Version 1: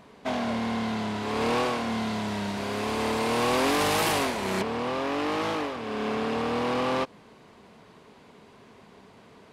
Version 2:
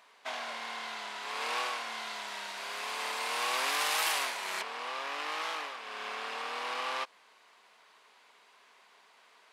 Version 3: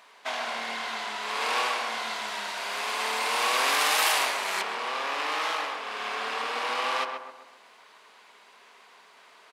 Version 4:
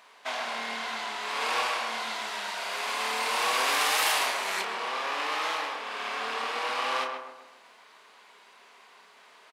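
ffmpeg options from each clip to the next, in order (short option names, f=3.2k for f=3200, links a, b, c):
-af "highpass=1.1k,volume=-2dB"
-filter_complex "[0:a]asplit=2[a][b];[b]adelay=131,lowpass=f=1.5k:p=1,volume=-4dB,asplit=2[c][d];[d]adelay=131,lowpass=f=1.5k:p=1,volume=0.5,asplit=2[e][f];[f]adelay=131,lowpass=f=1.5k:p=1,volume=0.5,asplit=2[g][h];[h]adelay=131,lowpass=f=1.5k:p=1,volume=0.5,asplit=2[i][j];[j]adelay=131,lowpass=f=1.5k:p=1,volume=0.5,asplit=2[k][l];[l]adelay=131,lowpass=f=1.5k:p=1,volume=0.5[m];[a][c][e][g][i][k][m]amix=inputs=7:normalize=0,volume=6dB"
-filter_complex "[0:a]asplit=2[a][b];[b]asoftclip=type=tanh:threshold=-20.5dB,volume=-4dB[c];[a][c]amix=inputs=2:normalize=0,asplit=2[d][e];[e]adelay=31,volume=-8dB[f];[d][f]amix=inputs=2:normalize=0,volume=-5.5dB"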